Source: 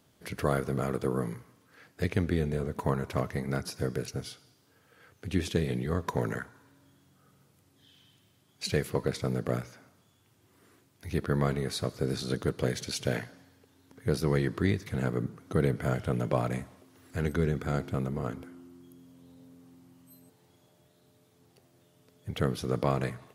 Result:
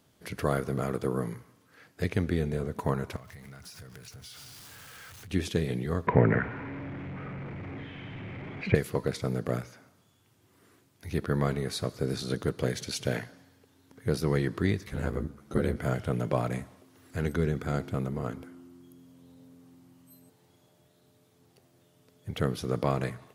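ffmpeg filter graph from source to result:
ffmpeg -i in.wav -filter_complex "[0:a]asettb=1/sr,asplit=3[link_01][link_02][link_03];[link_01]atrim=end=3.164[link_04];[link_02]atrim=start=3.16:end=5.31,asetpts=PTS-STARTPTS,afade=type=in:duration=0.004:curve=qsin,afade=type=out:start_time=2.146:duration=0.004:curve=qsin,aeval=exprs='val(0)+0.5*0.00841*sgn(val(0))':channel_layout=same,equalizer=frequency=350:width=0.61:gain=-11.5,acompressor=threshold=-44dB:ratio=6:attack=3.2:release=140:knee=1:detection=peak[link_05];[link_03]atrim=start=5.306[link_06];[link_04][link_05]acrossfade=duration=0.004:curve1=hsin:curve2=qsin[link_07];[link_07][link_06]acrossfade=duration=0.004:curve1=qsin:curve2=hsin,asettb=1/sr,asplit=3[link_08][link_09][link_10];[link_08]atrim=end=6.074[link_11];[link_09]atrim=start=6.07:end=8.75,asetpts=PTS-STARTPTS,afade=type=in:duration=0.004:curve=qsin,afade=type=out:start_time=2.676:duration=0.004:curve=qsin,aeval=exprs='val(0)+0.5*0.00891*sgn(val(0))':channel_layout=same,lowpass=frequency=2200:width_type=q:width=4.9,tiltshelf=frequency=1500:gain=9[link_12];[link_10]atrim=start=8.746[link_13];[link_11][link_12]acrossfade=duration=0.004:curve1=hsin:curve2=qsin[link_14];[link_14][link_13]acrossfade=duration=0.004:curve1=qsin:curve2=hsin,asettb=1/sr,asplit=3[link_15][link_16][link_17];[link_15]atrim=end=14.864[link_18];[link_16]atrim=start=14.86:end=15.77,asetpts=PTS-STARTPTS,afade=type=in:duration=0.004:curve=qsin,afade=type=out:start_time=0.906:duration=0.004:curve=qsin,aeval=exprs='val(0)*sin(2*PI*50*n/s)':channel_layout=same,asplit=2[link_19][link_20];[link_20]adelay=14,volume=-3dB[link_21];[link_19][link_21]amix=inputs=2:normalize=0,atrim=end_sample=40131[link_22];[link_17]atrim=start=15.766[link_23];[link_18][link_22]acrossfade=duration=0.004:curve1=hsin:curve2=qsin[link_24];[link_24][link_23]acrossfade=duration=0.004:curve1=qsin:curve2=hsin" out.wav

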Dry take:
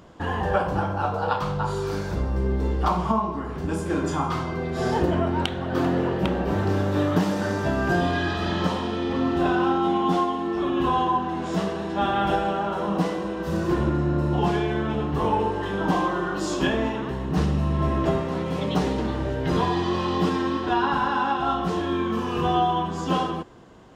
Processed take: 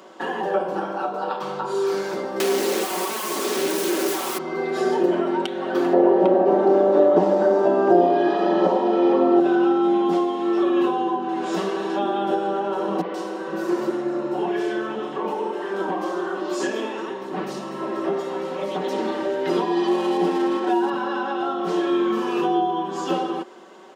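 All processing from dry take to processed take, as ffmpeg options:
ffmpeg -i in.wav -filter_complex "[0:a]asettb=1/sr,asplit=3[link_01][link_02][link_03];[link_01]atrim=end=2.404[link_04];[link_02]atrim=start=2.4:end=4.38,asetpts=PTS-STARTPTS,afade=type=in:duration=0.004:curve=qsin,afade=type=out:start_time=1.976:duration=0.004:curve=qsin,highpass=frequency=110:poles=1,asplit=2[link_05][link_06];[link_06]highpass=frequency=720:poles=1,volume=36dB,asoftclip=type=tanh:threshold=-10dB[link_07];[link_05][link_07]amix=inputs=2:normalize=0,lowpass=frequency=6200:poles=1,volume=-6dB,aeval=exprs='(mod(7.94*val(0)+1,2)-1)/7.94':channel_layout=same[link_08];[link_03]atrim=start=4.376[link_09];[link_04][link_08]acrossfade=duration=0.004:curve1=hsin:curve2=qsin[link_10];[link_10][link_09]acrossfade=duration=0.004:curve1=qsin:curve2=hsin,asettb=1/sr,asplit=3[link_11][link_12][link_13];[link_11]atrim=end=5.934[link_14];[link_12]atrim=start=5.93:end=9.4,asetpts=PTS-STARTPTS,afade=type=in:duration=0.004:curve=qsin,afade=type=out:start_time=3.466:duration=0.004:curve=qsin,lowpass=8300,equalizer=frequency=730:width=0.84:gain=14.5[link_15];[link_13]atrim=start=9.396[link_16];[link_14][link_15]acrossfade=duration=0.004:curve1=hsin:curve2=qsin[link_17];[link_17][link_16]acrossfade=duration=0.004:curve1=qsin:curve2=hsin,asettb=1/sr,asplit=3[link_18][link_19][link_20];[link_18]atrim=end=13.014[link_21];[link_19]atrim=start=13.01:end=18.93,asetpts=PTS-STARTPTS,afade=type=in:duration=0.004:curve=qsin,afade=type=out:start_time=5.916:duration=0.004:curve=qsin,flanger=delay=0.1:depth=8.2:regen=70:speed=1.9:shape=triangular,acrossover=split=3200[link_22][link_23];[link_23]adelay=130[link_24];[link_22][link_24]amix=inputs=2:normalize=0,atrim=end_sample=261072[link_25];[link_20]atrim=start=18.926[link_26];[link_21][link_25]acrossfade=duration=0.004:curve1=hsin:curve2=qsin[link_27];[link_27][link_26]acrossfade=duration=0.004:curve1=qsin:curve2=hsin,asettb=1/sr,asplit=3[link_28][link_29][link_30];[link_28]atrim=end=19.874[link_31];[link_29]atrim=start=19.87:end=20.9,asetpts=PTS-STARTPTS,afade=type=in:duration=0.004:curve=qsin,afade=type=out:start_time=1.026:duration=0.004:curve=qsin,equalizer=frequency=820:width=5.8:gain=8,bandreject=frequency=1200:width=6.1,adynamicsmooth=sensitivity=7.5:basefreq=1300[link_32];[link_30]atrim=start=20.896[link_33];[link_31][link_32]acrossfade=duration=0.004:curve1=hsin:curve2=qsin[link_34];[link_34][link_33]acrossfade=duration=0.004:curve1=qsin:curve2=hsin,highpass=frequency=290:width=0.5412,highpass=frequency=290:width=1.3066,aecho=1:1:5.3:0.62,acrossover=split=470[link_35][link_36];[link_36]acompressor=threshold=-32dB:ratio=6[link_37];[link_35][link_37]amix=inputs=2:normalize=0,volume=5dB" out.wav

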